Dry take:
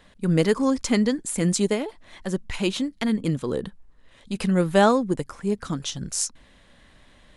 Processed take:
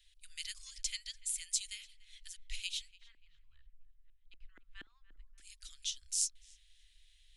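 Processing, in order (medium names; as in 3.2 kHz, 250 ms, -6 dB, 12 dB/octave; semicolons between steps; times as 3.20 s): inverse Chebyshev band-stop 180–630 Hz, stop band 80 dB; 2.91–5.38 s: LFO low-pass saw up 4.2 Hz 290–1500 Hz; filtered feedback delay 291 ms, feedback 58%, low-pass 1.6 kHz, level -16 dB; trim -6.5 dB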